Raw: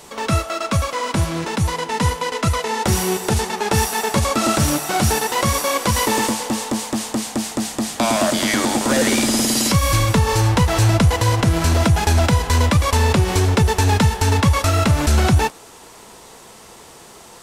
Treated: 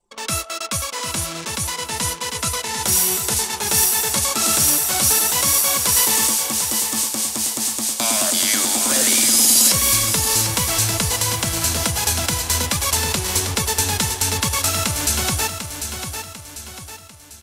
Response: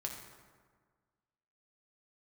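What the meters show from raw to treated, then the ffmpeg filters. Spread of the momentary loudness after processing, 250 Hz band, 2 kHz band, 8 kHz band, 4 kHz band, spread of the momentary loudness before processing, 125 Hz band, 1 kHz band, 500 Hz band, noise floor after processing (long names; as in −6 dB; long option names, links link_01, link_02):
10 LU, −9.0 dB, −2.0 dB, +8.5 dB, +3.5 dB, 6 LU, −11.0 dB, −5.5 dB, −8.0 dB, −38 dBFS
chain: -filter_complex "[0:a]lowshelf=frequency=120:gain=-4,bandreject=frequency=1900:width=28,anlmdn=25.1,asplit=2[link_01][link_02];[link_02]aecho=0:1:746|1492|2238|2984|3730:0.398|0.179|0.0806|0.0363|0.0163[link_03];[link_01][link_03]amix=inputs=2:normalize=0,crystalizer=i=6.5:c=0,volume=-9.5dB"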